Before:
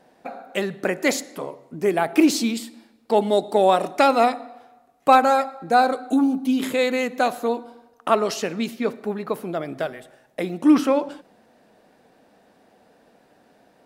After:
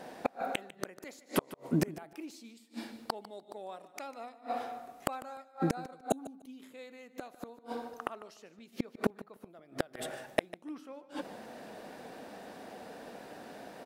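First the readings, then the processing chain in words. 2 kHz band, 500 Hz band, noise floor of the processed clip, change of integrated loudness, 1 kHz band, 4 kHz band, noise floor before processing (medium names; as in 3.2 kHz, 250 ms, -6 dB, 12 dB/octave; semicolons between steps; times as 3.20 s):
-16.0 dB, -17.5 dB, -61 dBFS, -18.5 dB, -19.0 dB, -15.5 dB, -59 dBFS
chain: bass shelf 130 Hz -6.5 dB; inverted gate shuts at -24 dBFS, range -37 dB; on a send: feedback delay 149 ms, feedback 18%, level -17 dB; on the sum: trim +9.5 dB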